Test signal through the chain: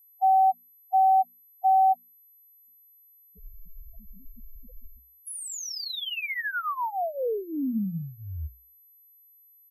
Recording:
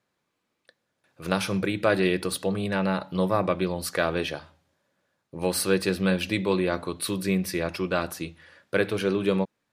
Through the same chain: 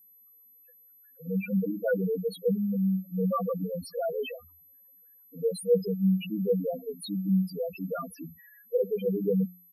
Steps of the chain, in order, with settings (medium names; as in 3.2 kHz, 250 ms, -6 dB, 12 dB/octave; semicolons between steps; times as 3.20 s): hum notches 60/120/180/240 Hz; comb 4.2 ms, depth 79%; loudest bins only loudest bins 2; whistle 12 kHz -55 dBFS